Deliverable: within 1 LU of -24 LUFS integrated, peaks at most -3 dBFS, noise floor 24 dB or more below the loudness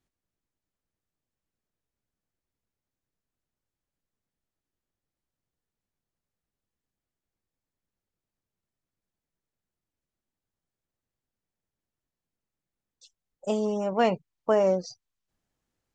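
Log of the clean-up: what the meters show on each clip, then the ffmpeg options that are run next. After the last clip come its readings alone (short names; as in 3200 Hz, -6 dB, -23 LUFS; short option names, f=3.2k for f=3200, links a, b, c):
loudness -26.5 LUFS; peak -11.0 dBFS; loudness target -24.0 LUFS
-> -af "volume=2.5dB"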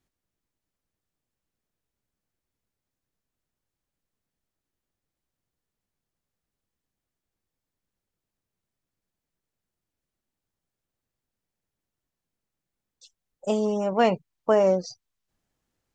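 loudness -24.0 LUFS; peak -8.5 dBFS; noise floor -87 dBFS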